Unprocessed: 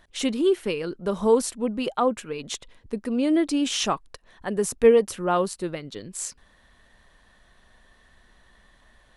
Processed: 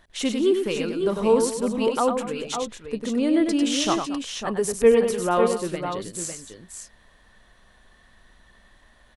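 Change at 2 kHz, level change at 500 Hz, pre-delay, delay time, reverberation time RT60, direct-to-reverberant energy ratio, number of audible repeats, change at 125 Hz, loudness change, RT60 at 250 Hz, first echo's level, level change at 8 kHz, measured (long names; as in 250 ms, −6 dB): +1.5 dB, +1.5 dB, no reverb audible, 98 ms, no reverb audible, no reverb audible, 3, +1.5 dB, +1.5 dB, no reverb audible, −6.0 dB, +1.5 dB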